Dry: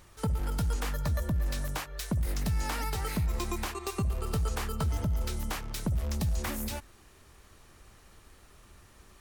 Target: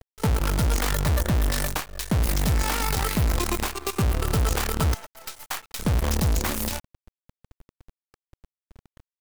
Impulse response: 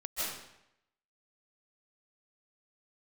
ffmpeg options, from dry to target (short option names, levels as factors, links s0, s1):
-filter_complex "[0:a]asettb=1/sr,asplit=3[s0][s1][s2];[s0]atrim=end=4.944[s3];[s1]atrim=start=4.94:end=5.79,asetpts=PTS-STARTPTS,afade=t=in:d=0.004:c=qsin,afade=t=out:st=0.846:d=0.004:c=qsin,highpass=f=650:w=0.5412,highpass=f=650:w=1.3066[s4];[s2]atrim=start=5.786[s5];[s3][s4]acrossfade=d=0.004:c1=hsin:c2=qsin[s6];[s6][s5]acrossfade=d=0.004:c1=qsin:c2=hsin,anlmdn=0.0158,acrusher=bits=6:dc=4:mix=0:aa=0.000001,volume=2.11"